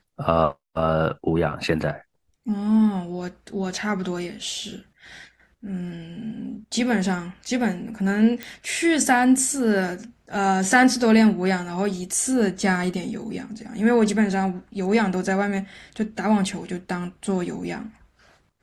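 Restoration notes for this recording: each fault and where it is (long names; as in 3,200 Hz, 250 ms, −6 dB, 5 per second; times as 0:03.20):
0:08.43: click −15 dBFS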